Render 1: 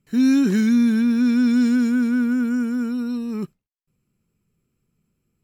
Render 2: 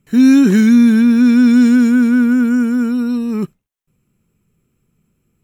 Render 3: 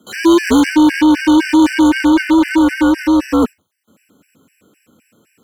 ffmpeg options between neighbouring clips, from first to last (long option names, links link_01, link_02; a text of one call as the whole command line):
ffmpeg -i in.wav -af "equalizer=frequency=4700:width_type=o:width=0.31:gain=-8,volume=8dB" out.wav
ffmpeg -i in.wav -filter_complex "[0:a]afreqshift=69,asplit=2[link_01][link_02];[link_02]highpass=frequency=720:poles=1,volume=28dB,asoftclip=type=tanh:threshold=-2dB[link_03];[link_01][link_03]amix=inputs=2:normalize=0,lowpass=frequency=6400:poles=1,volume=-6dB,afftfilt=real='re*gt(sin(2*PI*3.9*pts/sr)*(1-2*mod(floor(b*sr/1024/1500),2)),0)':imag='im*gt(sin(2*PI*3.9*pts/sr)*(1-2*mod(floor(b*sr/1024/1500),2)),0)':win_size=1024:overlap=0.75,volume=-1dB" out.wav